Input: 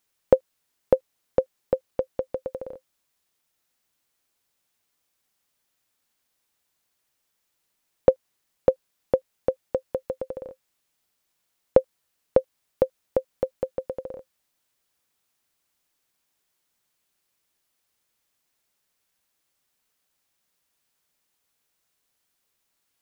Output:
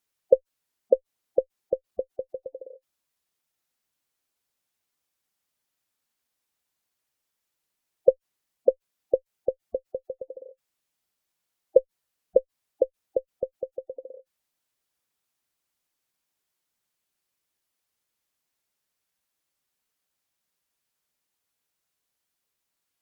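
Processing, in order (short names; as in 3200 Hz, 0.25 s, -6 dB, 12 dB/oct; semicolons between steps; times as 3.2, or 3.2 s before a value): added harmonics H 5 -30 dB, 6 -33 dB, 7 -21 dB, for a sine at -2 dBFS; spectral gate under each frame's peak -15 dB strong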